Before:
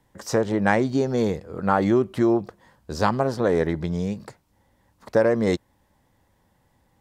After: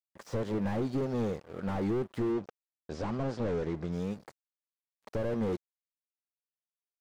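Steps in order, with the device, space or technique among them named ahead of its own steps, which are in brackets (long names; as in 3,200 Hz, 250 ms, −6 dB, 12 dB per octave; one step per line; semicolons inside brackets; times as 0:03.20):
early transistor amplifier (dead-zone distortion −43.5 dBFS; slew-rate limiting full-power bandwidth 25 Hz)
0:02.32–0:03.92: low-pass filter 8,000 Hz 24 dB per octave
low-shelf EQ 190 Hz −6 dB
level −4 dB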